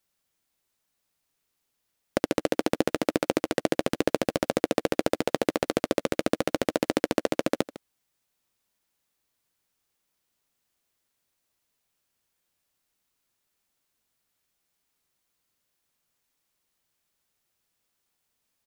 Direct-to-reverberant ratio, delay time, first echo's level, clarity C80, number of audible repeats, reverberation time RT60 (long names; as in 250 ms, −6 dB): no reverb audible, 154 ms, −17.0 dB, no reverb audible, 1, no reverb audible